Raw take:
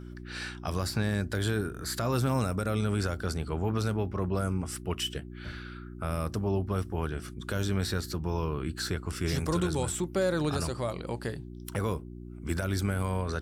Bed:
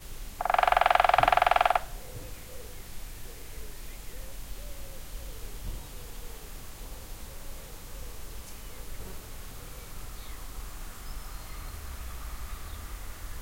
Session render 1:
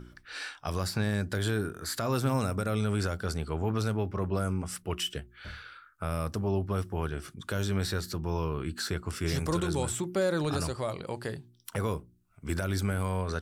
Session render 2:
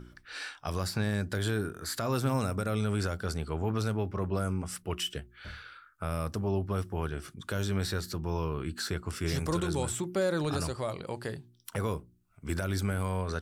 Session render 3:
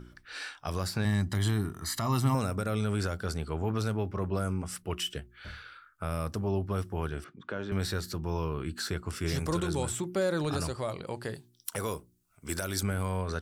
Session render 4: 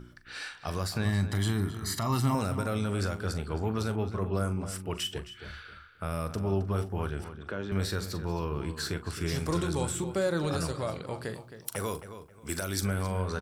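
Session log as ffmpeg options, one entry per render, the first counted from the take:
-af "bandreject=f=60:t=h:w=4,bandreject=f=120:t=h:w=4,bandreject=f=180:t=h:w=4,bandreject=f=240:t=h:w=4,bandreject=f=300:t=h:w=4,bandreject=f=360:t=h:w=4"
-af "volume=-1dB"
-filter_complex "[0:a]asettb=1/sr,asplit=3[a][b][c];[a]atrim=end=1.054[d];[b]atrim=start=1.05:end=2.35,asetpts=PTS-STARTPTS,afade=t=in:d=0.004:c=qsin,afade=t=out:st=1.296:d=0.004:c=qsin,aecho=1:1:1:0.75,atrim=end_sample=57330[e];[c]atrim=start=2.346[f];[d][e]acrossfade=d=0.004:c1=hsin:c2=qsin[g];[g][f]acrossfade=d=0.004:c1=qsin:c2=hsin,asettb=1/sr,asplit=3[h][i][j];[h]atrim=end=7.244[k];[i]atrim=start=7.24:end=7.72,asetpts=PTS-STARTPTS,afade=t=in:d=0.004:c=qsin,afade=t=out:st=0.476:d=0.004:c=qsin,highpass=200,lowpass=2.1k[l];[j]atrim=start=7.716[m];[k][l]acrossfade=d=0.004:c1=hsin:c2=qsin[n];[n][m]acrossfade=d=0.004:c1=qsin:c2=hsin,asettb=1/sr,asplit=3[o][p][q];[o]atrim=end=11.344[r];[p]atrim=start=11.34:end=12.83,asetpts=PTS-STARTPTS,afade=t=in:d=0.004:c=qsin,afade=t=out:st=1.486:d=0.004:c=qsin,bass=f=250:g=-6,treble=f=4k:g=9[s];[q]atrim=start=12.826[t];[r][s]acrossfade=d=0.004:c1=hsin:c2=qsin[u];[u][t]acrossfade=d=0.004:c1=qsin:c2=hsin"
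-filter_complex "[0:a]asplit=2[a][b];[b]adelay=41,volume=-12.5dB[c];[a][c]amix=inputs=2:normalize=0,asplit=2[d][e];[e]adelay=267,lowpass=f=3.6k:p=1,volume=-11dB,asplit=2[f][g];[g]adelay=267,lowpass=f=3.6k:p=1,volume=0.27,asplit=2[h][i];[i]adelay=267,lowpass=f=3.6k:p=1,volume=0.27[j];[f][h][j]amix=inputs=3:normalize=0[k];[d][k]amix=inputs=2:normalize=0"

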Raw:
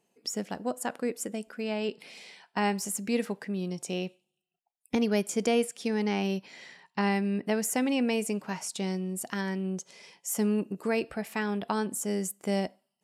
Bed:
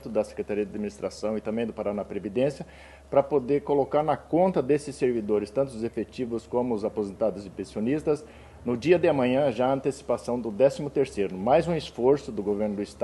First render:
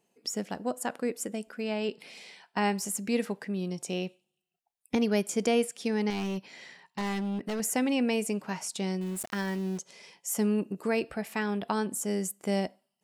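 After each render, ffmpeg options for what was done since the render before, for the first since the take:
-filter_complex "[0:a]asettb=1/sr,asplit=3[a][b][c];[a]atrim=end=6.104[d];[b]atrim=start=6.1:end=7.6,asetpts=PTS-STARTPTS,afade=t=in:d=0.004:c=qsin,afade=t=out:st=1.496:d=0.004:c=qsin,asoftclip=type=hard:threshold=-29dB[e];[c]atrim=start=7.596[f];[d][e]acrossfade=d=0.004:c1=hsin:c2=qsin[g];[g][f]acrossfade=d=0.004:c1=qsin:c2=hsin,asettb=1/sr,asplit=3[h][i][j];[h]atrim=end=9.014[k];[i]atrim=start=9.01:end=9.78,asetpts=PTS-STARTPTS,afade=t=in:d=0.004:c=qsin,afade=t=out:st=0.766:d=0.004:c=qsin,aeval=exprs='val(0)*gte(abs(val(0)),0.00891)':c=same[l];[j]atrim=start=9.776[m];[k][l]acrossfade=d=0.004:c1=hsin:c2=qsin[n];[n][m]acrossfade=d=0.004:c1=qsin:c2=hsin"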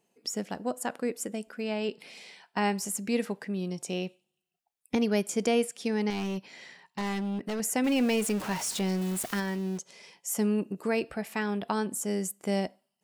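-filter_complex "[0:a]asettb=1/sr,asplit=3[a][b][c];[a]atrim=end=7.844[d];[b]atrim=start=7.84:end=9.4,asetpts=PTS-STARTPTS,afade=t=in:d=0.004:c=qsin,afade=t=out:st=1.556:d=0.004:c=qsin,aeval=exprs='val(0)+0.5*0.0224*sgn(val(0))':c=same[e];[c]atrim=start=9.396[f];[d][e]acrossfade=d=0.004:c1=hsin:c2=qsin[g];[g][f]acrossfade=d=0.004:c1=qsin:c2=hsin"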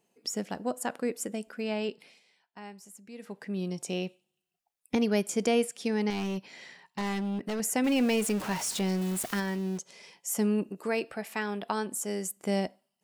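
-filter_complex "[0:a]asettb=1/sr,asplit=3[a][b][c];[a]atrim=end=10.694[d];[b]atrim=start=10.69:end=12.37,asetpts=PTS-STARTPTS,afade=t=in:d=0.004:c=qsin,afade=t=out:st=1.676:d=0.004:c=qsin,highpass=f=290:p=1[e];[c]atrim=start=12.366[f];[d][e]acrossfade=d=0.004:c1=hsin:c2=qsin[g];[g][f]acrossfade=d=0.004:c1=qsin:c2=hsin,asplit=3[h][i][j];[h]atrim=end=2.21,asetpts=PTS-STARTPTS,afade=t=out:st=1.8:d=0.41:silence=0.133352[k];[i]atrim=start=2.21:end=3.18,asetpts=PTS-STARTPTS,volume=-17.5dB[l];[j]atrim=start=3.18,asetpts=PTS-STARTPTS,afade=t=in:d=0.41:silence=0.133352[m];[k][l][m]concat=n=3:v=0:a=1"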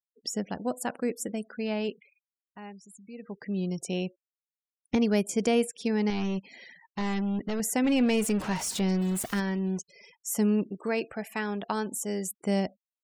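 -af "afftfilt=real='re*gte(hypot(re,im),0.00447)':imag='im*gte(hypot(re,im),0.00447)':win_size=1024:overlap=0.75,lowshelf=f=130:g=9.5"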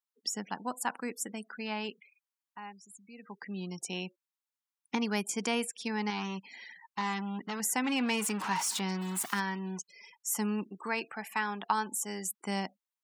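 -af "highpass=f=170:w=0.5412,highpass=f=170:w=1.3066,lowshelf=f=740:t=q:w=3:g=-6.5"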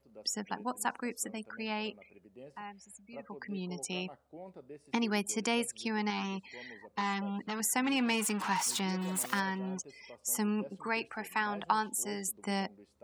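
-filter_complex "[1:a]volume=-26.5dB[a];[0:a][a]amix=inputs=2:normalize=0"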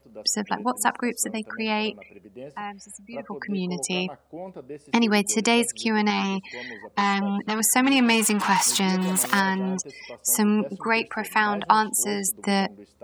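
-af "volume=11dB"

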